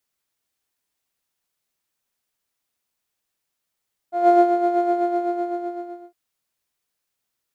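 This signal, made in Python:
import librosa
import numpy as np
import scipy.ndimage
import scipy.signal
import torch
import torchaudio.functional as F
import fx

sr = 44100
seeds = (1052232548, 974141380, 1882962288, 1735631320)

y = fx.sub_patch_tremolo(sr, seeds[0], note=77, wave='triangle', wave2='square', interval_st=12, detune_cents=16, level2_db=-15.0, sub_db=-14, noise_db=-14.5, kind='bandpass', cutoff_hz=360.0, q=2.9, env_oct=0.5, env_decay_s=0.27, env_sustain_pct=40, attack_ms=217.0, decay_s=0.18, sustain_db=-7.5, release_s=1.29, note_s=0.72, lfo_hz=7.9, tremolo_db=6)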